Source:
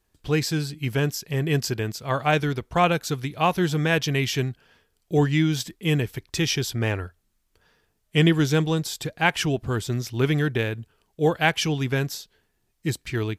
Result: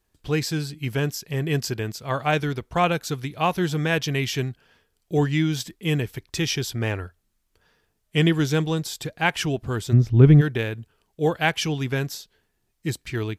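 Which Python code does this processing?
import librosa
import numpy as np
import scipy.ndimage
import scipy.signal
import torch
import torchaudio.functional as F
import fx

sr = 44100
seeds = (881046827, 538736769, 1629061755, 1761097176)

y = fx.tilt_eq(x, sr, slope=-4.5, at=(9.92, 10.4), fade=0.02)
y = F.gain(torch.from_numpy(y), -1.0).numpy()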